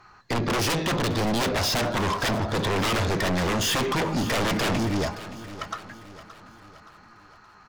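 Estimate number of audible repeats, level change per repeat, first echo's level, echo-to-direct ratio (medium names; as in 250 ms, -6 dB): 4, -6.0 dB, -15.0 dB, -14.0 dB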